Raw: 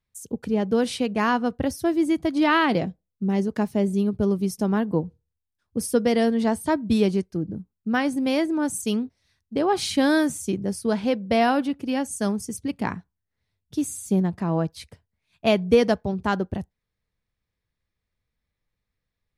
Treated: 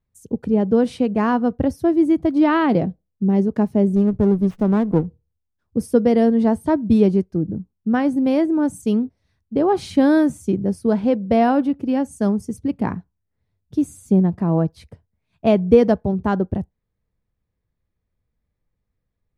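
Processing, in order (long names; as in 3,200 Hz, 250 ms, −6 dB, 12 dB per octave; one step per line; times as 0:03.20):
tilt shelving filter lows +8 dB, about 1,400 Hz
0:03.96–0:05.06: windowed peak hold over 9 samples
level −1.5 dB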